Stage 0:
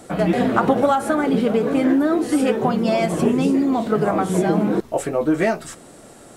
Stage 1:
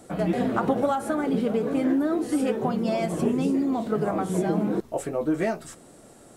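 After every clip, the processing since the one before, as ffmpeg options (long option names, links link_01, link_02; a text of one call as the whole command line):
ffmpeg -i in.wav -af "equalizer=frequency=2200:width=0.4:gain=-3.5,volume=-5.5dB" out.wav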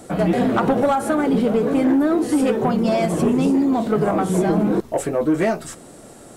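ffmpeg -i in.wav -af "asoftclip=type=tanh:threshold=-18dB,volume=8dB" out.wav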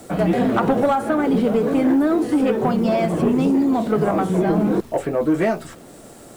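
ffmpeg -i in.wav -filter_complex "[0:a]acrossover=split=240|3800[link_01][link_02][link_03];[link_03]acompressor=threshold=-46dB:ratio=6[link_04];[link_01][link_02][link_04]amix=inputs=3:normalize=0,acrusher=bits=9:dc=4:mix=0:aa=0.000001" out.wav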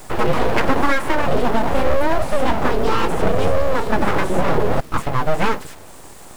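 ffmpeg -i in.wav -af "aeval=exprs='abs(val(0))':channel_layout=same,volume=4dB" out.wav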